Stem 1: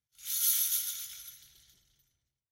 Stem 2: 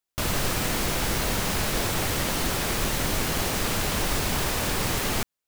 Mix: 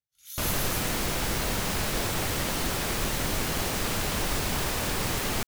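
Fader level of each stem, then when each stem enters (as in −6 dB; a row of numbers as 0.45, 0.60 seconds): −7.0, −2.5 decibels; 0.00, 0.20 seconds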